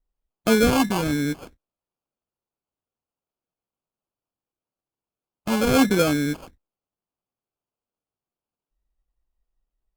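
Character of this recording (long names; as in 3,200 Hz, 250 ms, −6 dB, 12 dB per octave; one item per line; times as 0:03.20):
phaser sweep stages 8, 0.86 Hz, lowest notch 550–2,900 Hz
aliases and images of a low sample rate 1,900 Hz, jitter 0%
Opus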